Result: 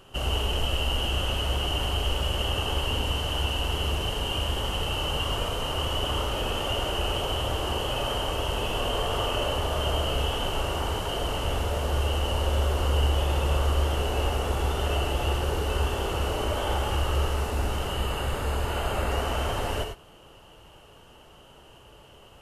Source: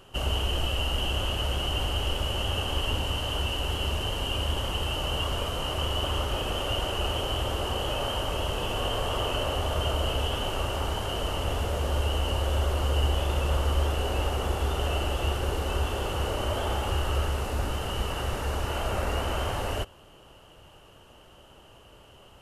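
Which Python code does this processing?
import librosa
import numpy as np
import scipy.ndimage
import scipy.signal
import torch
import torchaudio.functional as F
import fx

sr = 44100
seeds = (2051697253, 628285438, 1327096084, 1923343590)

y = fx.notch(x, sr, hz=5700.0, q=6.0, at=(17.88, 19.11))
y = fx.rev_gated(y, sr, seeds[0], gate_ms=120, shape='rising', drr_db=4.0)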